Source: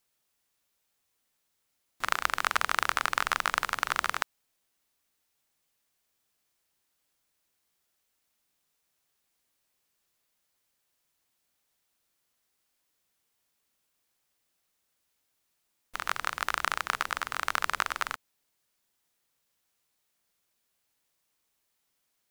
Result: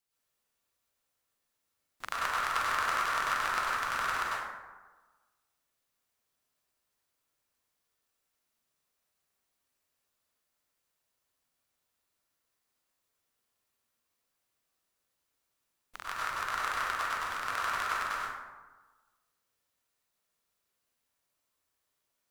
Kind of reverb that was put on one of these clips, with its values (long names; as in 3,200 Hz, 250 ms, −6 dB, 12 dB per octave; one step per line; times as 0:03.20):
dense smooth reverb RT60 1.3 s, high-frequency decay 0.45×, pre-delay 85 ms, DRR −7 dB
level −10 dB